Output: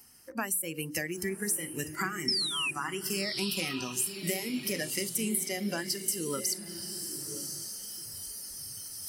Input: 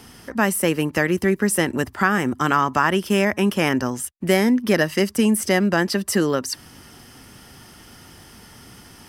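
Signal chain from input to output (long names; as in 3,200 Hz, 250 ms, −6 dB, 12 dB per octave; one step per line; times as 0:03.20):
reversed playback
upward compression, threshold −36 dBFS
reversed playback
notch filter 3,500 Hz, Q 5.2
sound drawn into the spectrogram fall, 0:02.28–0:02.71, 2,400–5,500 Hz −14 dBFS
first-order pre-emphasis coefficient 0.8
downward compressor 16 to 1, threshold −35 dBFS, peak gain reduction 18.5 dB
on a send: feedback delay with all-pass diffusion 1,029 ms, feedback 41%, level −5 dB
on the sum: noise reduction from a noise print of the clip's start 15 dB
parametric band 3,500 Hz −7 dB 0.24 octaves
mains-hum notches 60/120/180/240/300/360/420/480/540 Hz
level +7.5 dB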